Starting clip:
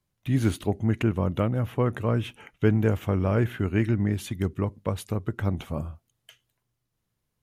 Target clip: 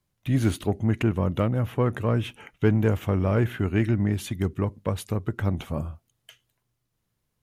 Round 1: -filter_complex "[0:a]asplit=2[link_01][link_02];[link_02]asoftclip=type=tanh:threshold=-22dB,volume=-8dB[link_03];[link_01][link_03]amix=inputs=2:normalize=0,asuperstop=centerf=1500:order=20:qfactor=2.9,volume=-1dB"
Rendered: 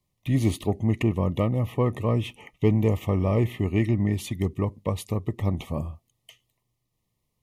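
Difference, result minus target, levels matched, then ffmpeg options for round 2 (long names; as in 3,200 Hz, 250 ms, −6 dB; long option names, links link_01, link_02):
2,000 Hz band −4.0 dB
-filter_complex "[0:a]asplit=2[link_01][link_02];[link_02]asoftclip=type=tanh:threshold=-22dB,volume=-8dB[link_03];[link_01][link_03]amix=inputs=2:normalize=0,volume=-1dB"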